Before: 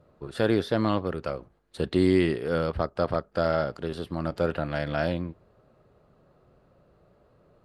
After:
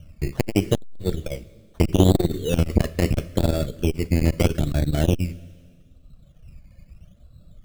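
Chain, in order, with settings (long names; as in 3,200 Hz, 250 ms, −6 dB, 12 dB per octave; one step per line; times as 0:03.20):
one scale factor per block 3 bits
phaser with its sweep stopped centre 2,200 Hz, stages 4
reverb reduction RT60 1.5 s
spectral tilt −4 dB per octave
phaser swept by the level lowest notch 360 Hz, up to 2,800 Hz, full sweep at −22.5 dBFS
sample-and-hold swept by an LFO 15×, swing 60% 0.78 Hz
convolution reverb, pre-delay 3 ms, DRR 10.5 dB
boost into a limiter +7 dB
saturating transformer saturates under 290 Hz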